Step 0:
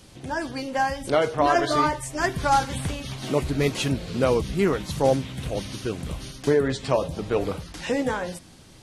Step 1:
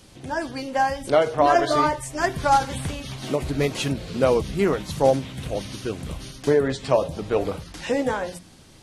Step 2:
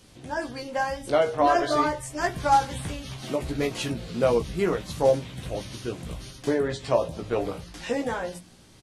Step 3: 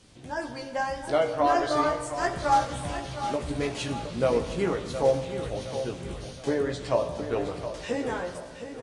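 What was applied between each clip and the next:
dynamic bell 650 Hz, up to +4 dB, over -31 dBFS, Q 1.5; hum notches 60/120/180 Hz; endings held to a fixed fall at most 220 dB/s
doubling 17 ms -5 dB; trim -4.5 dB
feedback delay 716 ms, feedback 45%, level -10.5 dB; on a send at -10 dB: reverberation RT60 1.6 s, pre-delay 58 ms; on the sum: resampled via 22.05 kHz; trim -2.5 dB

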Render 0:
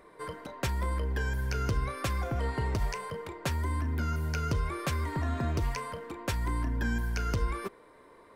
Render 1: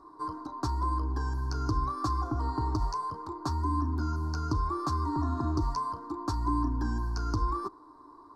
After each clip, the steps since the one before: FFT filter 110 Hz 0 dB, 210 Hz -10 dB, 300 Hz +11 dB, 520 Hz -16 dB, 770 Hz +1 dB, 1.1 kHz +9 dB, 2.2 kHz -28 dB, 3.1 kHz -23 dB, 4.5 kHz +2 dB, 14 kHz -18 dB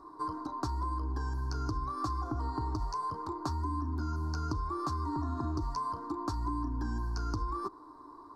compression 4:1, threshold -33 dBFS, peak gain reduction 8.5 dB; trim +1.5 dB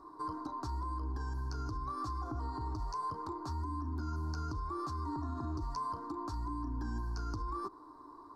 peak limiter -28.5 dBFS, peak gain reduction 8 dB; trim -2 dB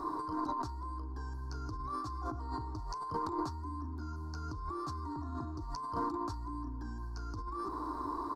echo from a far wall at 120 m, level -28 dB; compressor with a negative ratio -46 dBFS, ratio -1; trim +7 dB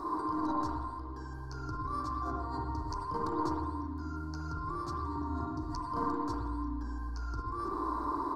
reverberation RT60 1.3 s, pre-delay 53 ms, DRR -2 dB

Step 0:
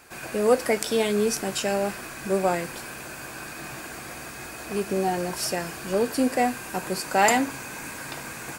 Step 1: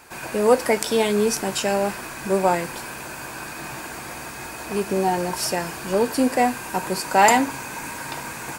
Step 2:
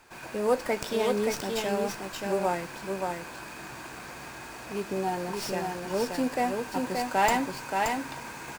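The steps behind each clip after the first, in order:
peaking EQ 930 Hz +8.5 dB 0.21 oct; trim +3 dB
delay 576 ms -4 dB; sliding maximum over 3 samples; trim -8.5 dB

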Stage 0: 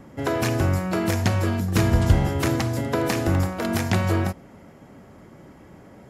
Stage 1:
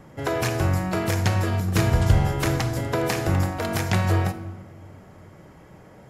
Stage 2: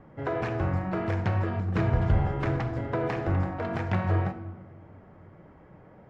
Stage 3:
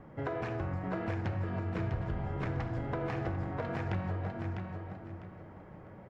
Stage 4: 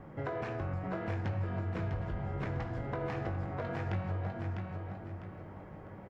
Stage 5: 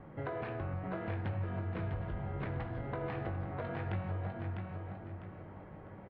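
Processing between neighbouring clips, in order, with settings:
peaking EQ 260 Hz -7 dB 0.62 oct; simulated room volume 900 m³, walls mixed, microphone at 0.51 m
low-pass 1.9 kHz 12 dB/octave; flange 1.8 Hz, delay 2.5 ms, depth 5.7 ms, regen -64%
compression 5:1, threshold -33 dBFS, peak gain reduction 14.5 dB; on a send: feedback delay 651 ms, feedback 25%, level -6 dB
in parallel at -0.5 dB: compression, threshold -43 dBFS, peak gain reduction 13.5 dB; on the sum: doubling 20 ms -8 dB; trim -4 dB
steep low-pass 4 kHz 36 dB/octave; trim -2 dB

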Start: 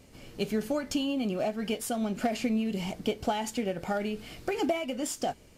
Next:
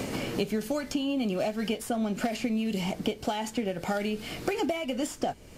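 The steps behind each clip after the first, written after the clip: three bands compressed up and down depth 100%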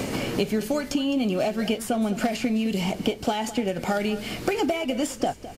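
delay 210 ms -15 dB; trim +4.5 dB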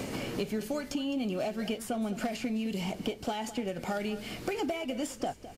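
saturation -12.5 dBFS, distortion -25 dB; trim -7.5 dB

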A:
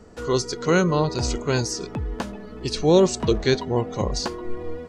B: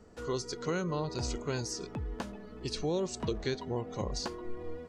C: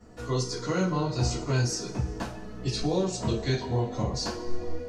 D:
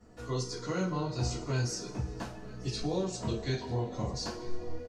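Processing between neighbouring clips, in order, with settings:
compression 5:1, threshold -20 dBFS, peak gain reduction 8.5 dB; trim -9 dB
two-slope reverb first 0.29 s, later 1.9 s, from -20 dB, DRR -9.5 dB; trim -4.5 dB
delay 943 ms -20.5 dB; trim -5.5 dB

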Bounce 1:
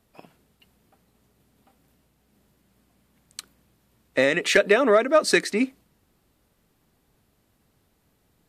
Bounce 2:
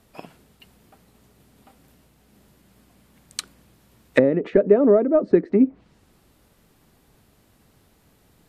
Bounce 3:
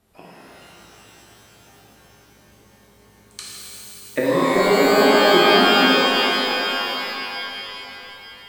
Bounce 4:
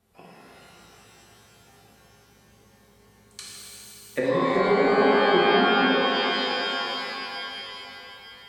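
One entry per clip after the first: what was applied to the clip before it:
low-pass that closes with the level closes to 410 Hz, closed at -19.5 dBFS; trim +8 dB
pitch-shifted reverb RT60 3.5 s, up +12 st, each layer -2 dB, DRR -7.5 dB; trim -7.5 dB
low-pass that closes with the level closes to 2.7 kHz, closed at -12 dBFS; comb of notches 310 Hz; trim -3.5 dB

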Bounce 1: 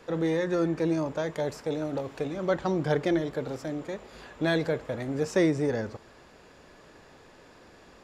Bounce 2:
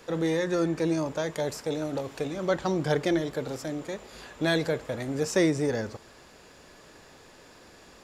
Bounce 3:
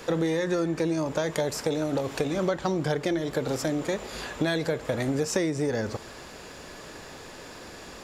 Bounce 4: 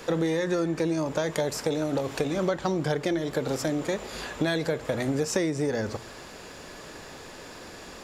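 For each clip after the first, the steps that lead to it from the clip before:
treble shelf 4.2 kHz +10 dB
compression 10:1, threshold -32 dBFS, peak gain reduction 13.5 dB; trim +9 dB
hum notches 60/120 Hz

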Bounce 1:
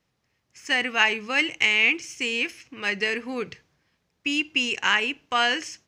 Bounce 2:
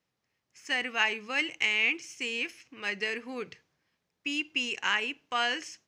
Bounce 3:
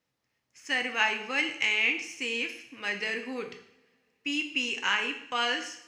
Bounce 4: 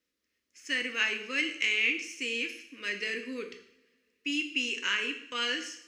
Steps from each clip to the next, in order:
bass shelf 100 Hz -10.5 dB; trim -6.5 dB
two-slope reverb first 0.7 s, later 3 s, from -26 dB, DRR 4.5 dB
static phaser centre 330 Hz, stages 4

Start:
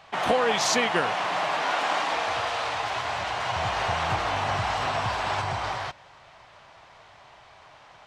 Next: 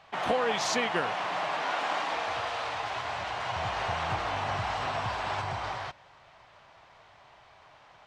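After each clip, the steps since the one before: treble shelf 7.6 kHz -7 dB; trim -4.5 dB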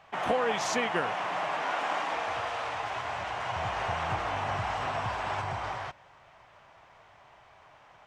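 peaking EQ 4.2 kHz -6.5 dB 0.69 oct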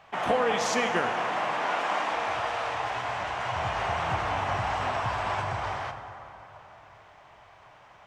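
plate-style reverb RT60 3.4 s, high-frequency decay 0.45×, DRR 7 dB; trim +2 dB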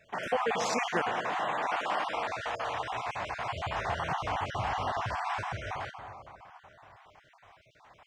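random holes in the spectrogram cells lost 30%; trim -2.5 dB

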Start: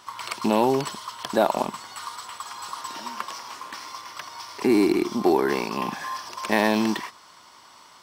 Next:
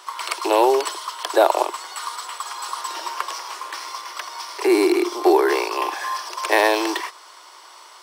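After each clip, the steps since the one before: steep high-pass 330 Hz 72 dB/octave; peaking EQ 9.5 kHz +3.5 dB 0.31 oct; trim +5.5 dB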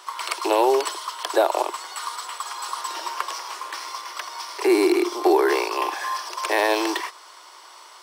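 loudness maximiser +6.5 dB; trim -7.5 dB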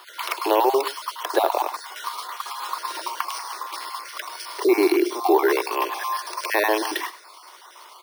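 random holes in the spectrogram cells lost 24%; delay 101 ms -16 dB; careless resampling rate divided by 3×, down filtered, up hold; trim +1 dB

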